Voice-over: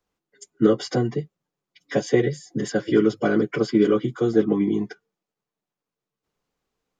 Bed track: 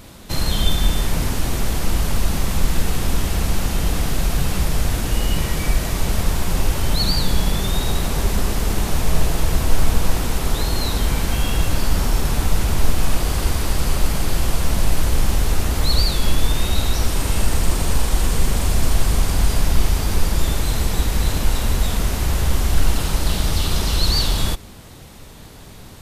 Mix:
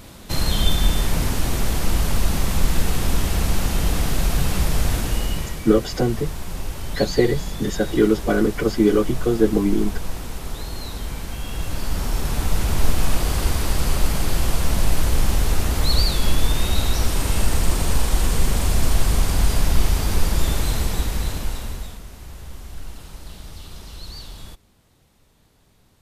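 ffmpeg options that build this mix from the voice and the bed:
-filter_complex "[0:a]adelay=5050,volume=1.5dB[a];[1:a]volume=8.5dB,afade=t=out:st=4.94:d=0.68:silence=0.334965,afade=t=in:st=11.42:d=1.47:silence=0.354813,afade=t=out:st=20.63:d=1.38:silence=0.133352[b];[a][b]amix=inputs=2:normalize=0"

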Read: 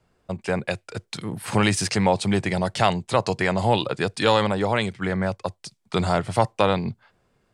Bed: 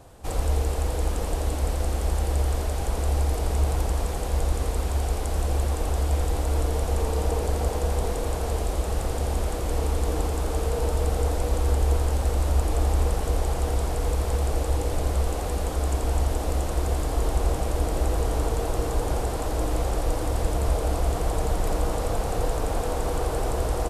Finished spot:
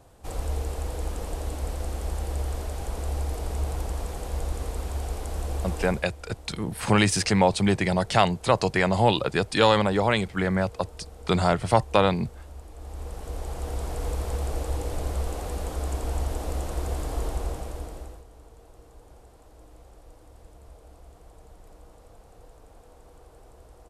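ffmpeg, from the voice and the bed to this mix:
-filter_complex "[0:a]adelay=5350,volume=0dB[a];[1:a]volume=10.5dB,afade=t=out:st=5.83:d=0.22:silence=0.177828,afade=t=in:st=12.76:d=1.28:silence=0.158489,afade=t=out:st=17.19:d=1.05:silence=0.0891251[b];[a][b]amix=inputs=2:normalize=0"

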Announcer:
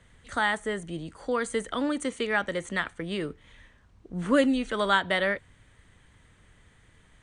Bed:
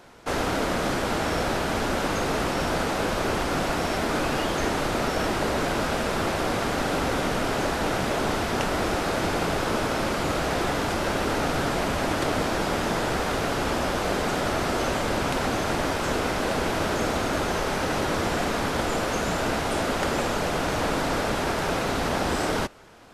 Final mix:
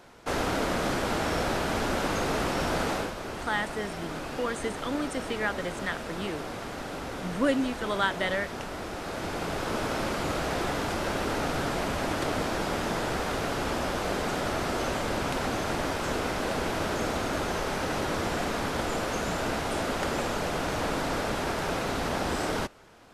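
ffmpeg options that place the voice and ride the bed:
-filter_complex "[0:a]adelay=3100,volume=-3.5dB[a];[1:a]volume=4.5dB,afade=t=out:st=2.93:d=0.2:silence=0.375837,afade=t=in:st=8.92:d=1:silence=0.446684[b];[a][b]amix=inputs=2:normalize=0"

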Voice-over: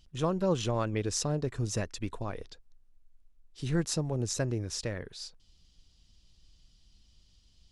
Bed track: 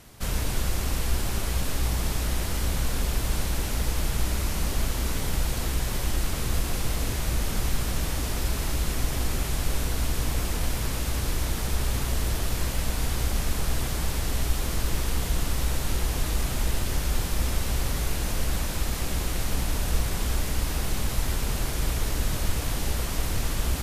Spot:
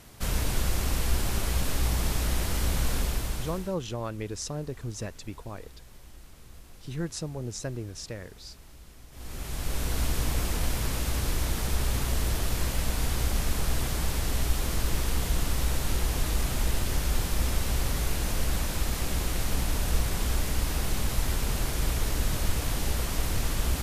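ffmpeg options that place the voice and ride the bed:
-filter_complex "[0:a]adelay=3250,volume=-3.5dB[a];[1:a]volume=21.5dB,afade=t=out:st=2.93:d=0.83:silence=0.0749894,afade=t=in:st=9.11:d=0.88:silence=0.0794328[b];[a][b]amix=inputs=2:normalize=0"

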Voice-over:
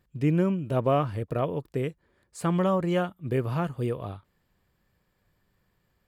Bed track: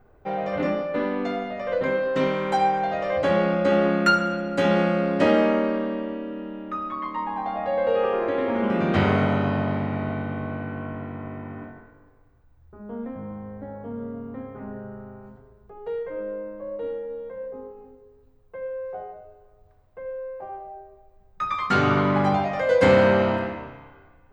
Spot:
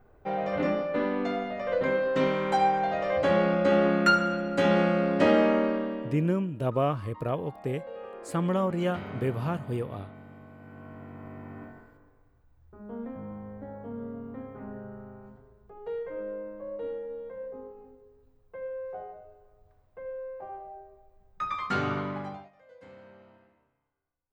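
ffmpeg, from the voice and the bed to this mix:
-filter_complex "[0:a]adelay=5900,volume=-2.5dB[a];[1:a]volume=12dB,afade=t=out:st=5.64:d=0.91:silence=0.149624,afade=t=in:st=10.56:d=1.27:silence=0.188365,afade=t=out:st=21.39:d=1.12:silence=0.0316228[b];[a][b]amix=inputs=2:normalize=0"

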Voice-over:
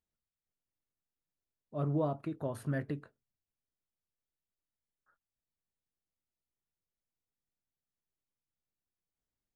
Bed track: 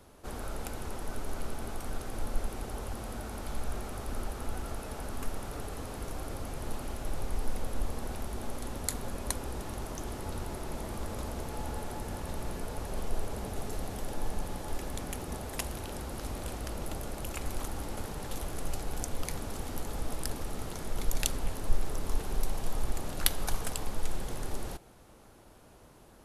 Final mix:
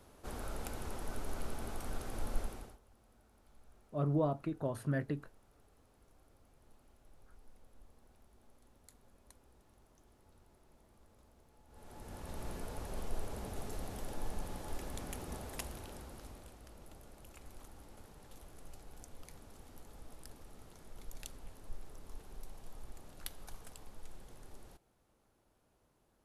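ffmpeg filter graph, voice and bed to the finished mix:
-filter_complex "[0:a]adelay=2200,volume=0dB[a];[1:a]volume=18dB,afade=t=out:st=2.38:d=0.4:silence=0.0630957,afade=t=in:st=11.68:d=0.79:silence=0.0794328,afade=t=out:st=15.38:d=1.15:silence=0.251189[b];[a][b]amix=inputs=2:normalize=0"

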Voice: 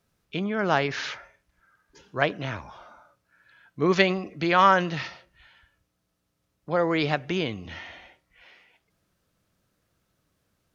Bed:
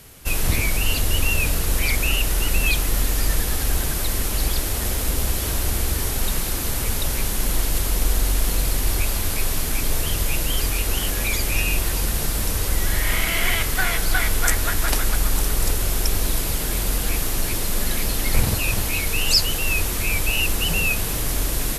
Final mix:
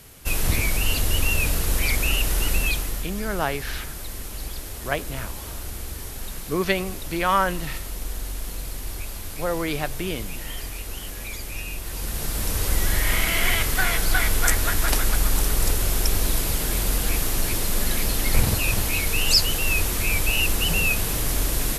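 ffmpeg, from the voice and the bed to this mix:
-filter_complex "[0:a]adelay=2700,volume=-2.5dB[a];[1:a]volume=9dB,afade=t=out:st=2.5:d=0.58:silence=0.334965,afade=t=in:st=11.82:d=0.9:silence=0.298538[b];[a][b]amix=inputs=2:normalize=0"

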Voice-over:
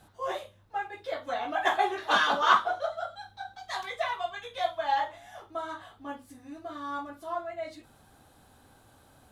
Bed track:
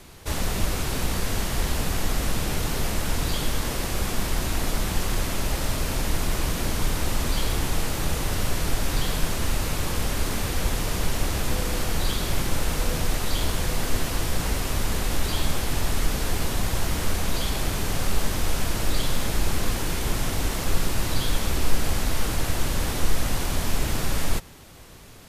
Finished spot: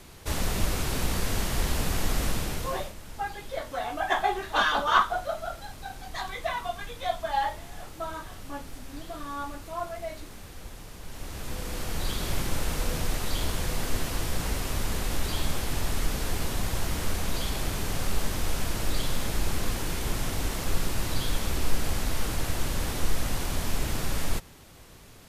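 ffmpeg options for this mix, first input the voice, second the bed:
-filter_complex "[0:a]adelay=2450,volume=0dB[a];[1:a]volume=12dB,afade=t=out:st=2.25:d=0.69:silence=0.158489,afade=t=in:st=11.03:d=1.26:silence=0.199526[b];[a][b]amix=inputs=2:normalize=0"

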